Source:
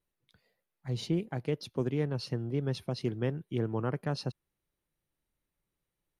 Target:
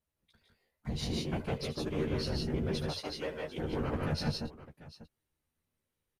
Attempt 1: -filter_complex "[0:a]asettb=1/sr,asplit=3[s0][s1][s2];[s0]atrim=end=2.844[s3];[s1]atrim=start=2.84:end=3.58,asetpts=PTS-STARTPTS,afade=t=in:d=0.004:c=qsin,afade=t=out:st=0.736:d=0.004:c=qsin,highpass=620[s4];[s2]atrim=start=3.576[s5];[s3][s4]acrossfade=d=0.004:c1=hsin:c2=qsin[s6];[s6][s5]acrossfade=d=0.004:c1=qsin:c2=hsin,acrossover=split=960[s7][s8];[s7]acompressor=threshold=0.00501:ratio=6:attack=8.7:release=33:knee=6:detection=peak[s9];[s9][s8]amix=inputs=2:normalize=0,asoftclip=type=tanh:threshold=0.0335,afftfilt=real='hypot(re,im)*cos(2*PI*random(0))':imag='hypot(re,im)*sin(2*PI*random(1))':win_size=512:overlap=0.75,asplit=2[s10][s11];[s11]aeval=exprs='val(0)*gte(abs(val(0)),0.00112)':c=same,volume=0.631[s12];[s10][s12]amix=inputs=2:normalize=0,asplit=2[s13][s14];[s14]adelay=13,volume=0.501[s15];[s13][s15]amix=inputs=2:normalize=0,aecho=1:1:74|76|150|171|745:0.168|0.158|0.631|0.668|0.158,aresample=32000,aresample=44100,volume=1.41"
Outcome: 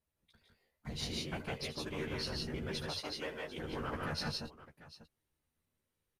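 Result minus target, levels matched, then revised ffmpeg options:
compression: peak gain reduction +10 dB
-filter_complex "[0:a]asettb=1/sr,asplit=3[s0][s1][s2];[s0]atrim=end=2.844[s3];[s1]atrim=start=2.84:end=3.58,asetpts=PTS-STARTPTS,afade=t=in:d=0.004:c=qsin,afade=t=out:st=0.736:d=0.004:c=qsin,highpass=620[s4];[s2]atrim=start=3.576[s5];[s3][s4]acrossfade=d=0.004:c1=hsin:c2=qsin[s6];[s6][s5]acrossfade=d=0.004:c1=qsin:c2=hsin,acrossover=split=960[s7][s8];[s7]acompressor=threshold=0.02:ratio=6:attack=8.7:release=33:knee=6:detection=peak[s9];[s9][s8]amix=inputs=2:normalize=0,asoftclip=type=tanh:threshold=0.0335,afftfilt=real='hypot(re,im)*cos(2*PI*random(0))':imag='hypot(re,im)*sin(2*PI*random(1))':win_size=512:overlap=0.75,asplit=2[s10][s11];[s11]aeval=exprs='val(0)*gte(abs(val(0)),0.00112)':c=same,volume=0.631[s12];[s10][s12]amix=inputs=2:normalize=0,asplit=2[s13][s14];[s14]adelay=13,volume=0.501[s15];[s13][s15]amix=inputs=2:normalize=0,aecho=1:1:74|76|150|171|745:0.168|0.158|0.631|0.668|0.158,aresample=32000,aresample=44100,volume=1.41"

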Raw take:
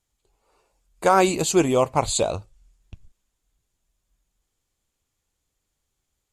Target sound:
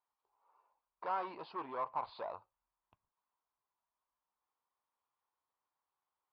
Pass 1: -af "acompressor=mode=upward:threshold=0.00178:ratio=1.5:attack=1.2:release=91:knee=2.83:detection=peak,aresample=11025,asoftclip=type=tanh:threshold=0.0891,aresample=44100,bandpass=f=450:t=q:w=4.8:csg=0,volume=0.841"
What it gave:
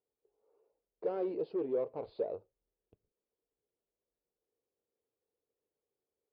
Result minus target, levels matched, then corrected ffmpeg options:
1 kHz band -15.0 dB
-af "acompressor=mode=upward:threshold=0.00178:ratio=1.5:attack=1.2:release=91:knee=2.83:detection=peak,aresample=11025,asoftclip=type=tanh:threshold=0.0891,aresample=44100,bandpass=f=1000:t=q:w=4.8:csg=0,volume=0.841"

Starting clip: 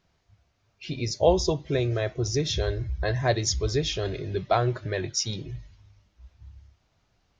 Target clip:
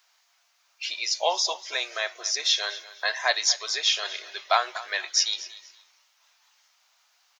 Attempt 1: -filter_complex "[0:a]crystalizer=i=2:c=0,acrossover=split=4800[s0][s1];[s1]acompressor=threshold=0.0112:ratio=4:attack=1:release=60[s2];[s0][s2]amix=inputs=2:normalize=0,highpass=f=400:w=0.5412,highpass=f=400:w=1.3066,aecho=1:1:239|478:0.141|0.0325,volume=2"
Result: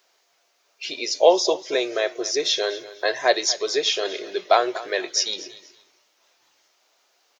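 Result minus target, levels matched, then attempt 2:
500 Hz band +10.0 dB
-filter_complex "[0:a]crystalizer=i=2:c=0,acrossover=split=4800[s0][s1];[s1]acompressor=threshold=0.0112:ratio=4:attack=1:release=60[s2];[s0][s2]amix=inputs=2:normalize=0,highpass=f=840:w=0.5412,highpass=f=840:w=1.3066,aecho=1:1:239|478:0.141|0.0325,volume=2"

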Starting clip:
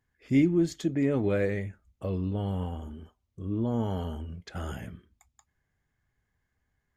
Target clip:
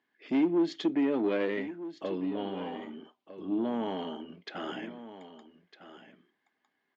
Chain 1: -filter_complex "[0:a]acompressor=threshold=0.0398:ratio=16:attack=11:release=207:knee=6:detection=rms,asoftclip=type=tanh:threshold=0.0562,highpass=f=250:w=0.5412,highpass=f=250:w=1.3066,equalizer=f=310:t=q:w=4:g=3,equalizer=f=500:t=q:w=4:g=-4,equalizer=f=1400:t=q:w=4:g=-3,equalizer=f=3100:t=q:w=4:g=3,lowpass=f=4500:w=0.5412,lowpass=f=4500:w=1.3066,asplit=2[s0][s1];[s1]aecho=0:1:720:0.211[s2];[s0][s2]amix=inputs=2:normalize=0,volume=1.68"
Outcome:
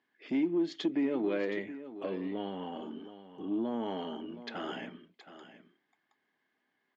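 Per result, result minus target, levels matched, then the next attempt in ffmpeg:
echo 535 ms early; compression: peak gain reduction +6 dB
-filter_complex "[0:a]acompressor=threshold=0.0398:ratio=16:attack=11:release=207:knee=6:detection=rms,asoftclip=type=tanh:threshold=0.0562,highpass=f=250:w=0.5412,highpass=f=250:w=1.3066,equalizer=f=310:t=q:w=4:g=3,equalizer=f=500:t=q:w=4:g=-4,equalizer=f=1400:t=q:w=4:g=-3,equalizer=f=3100:t=q:w=4:g=3,lowpass=f=4500:w=0.5412,lowpass=f=4500:w=1.3066,asplit=2[s0][s1];[s1]aecho=0:1:1255:0.211[s2];[s0][s2]amix=inputs=2:normalize=0,volume=1.68"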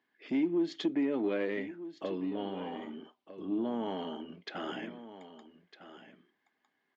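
compression: peak gain reduction +6 dB
-filter_complex "[0:a]acompressor=threshold=0.0841:ratio=16:attack=11:release=207:knee=6:detection=rms,asoftclip=type=tanh:threshold=0.0562,highpass=f=250:w=0.5412,highpass=f=250:w=1.3066,equalizer=f=310:t=q:w=4:g=3,equalizer=f=500:t=q:w=4:g=-4,equalizer=f=1400:t=q:w=4:g=-3,equalizer=f=3100:t=q:w=4:g=3,lowpass=f=4500:w=0.5412,lowpass=f=4500:w=1.3066,asplit=2[s0][s1];[s1]aecho=0:1:1255:0.211[s2];[s0][s2]amix=inputs=2:normalize=0,volume=1.68"

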